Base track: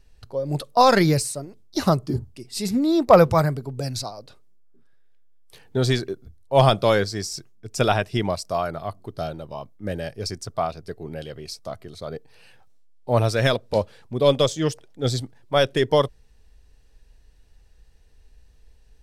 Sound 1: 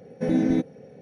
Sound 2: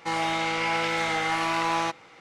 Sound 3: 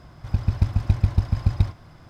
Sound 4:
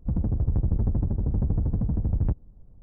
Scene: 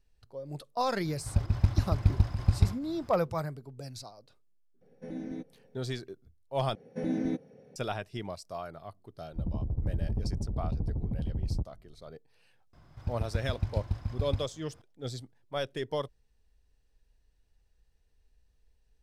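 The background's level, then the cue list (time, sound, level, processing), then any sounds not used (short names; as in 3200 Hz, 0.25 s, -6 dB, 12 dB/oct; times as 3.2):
base track -14.5 dB
1.02 add 3 -4 dB + pump 136 bpm, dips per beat 1, -9 dB, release 0.12 s
4.81 add 1 -17 dB
6.75 replace with 1 -9 dB
9.3 add 4 -7.5 dB + LPF 1100 Hz 24 dB/oct
12.73 add 3 -11.5 dB
not used: 2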